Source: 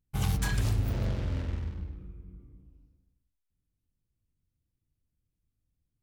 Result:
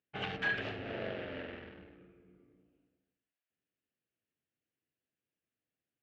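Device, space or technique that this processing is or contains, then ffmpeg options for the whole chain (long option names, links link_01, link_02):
phone earpiece: -af "highpass=340,equalizer=frequency=430:width_type=q:width=4:gain=4,equalizer=frequency=640:width_type=q:width=4:gain=5,equalizer=frequency=1000:width_type=q:width=4:gain=-9,equalizer=frequency=1700:width_type=q:width=4:gain=7,equalizer=frequency=2800:width_type=q:width=4:gain=6,lowpass=frequency=3200:width=0.5412,lowpass=frequency=3200:width=1.3066"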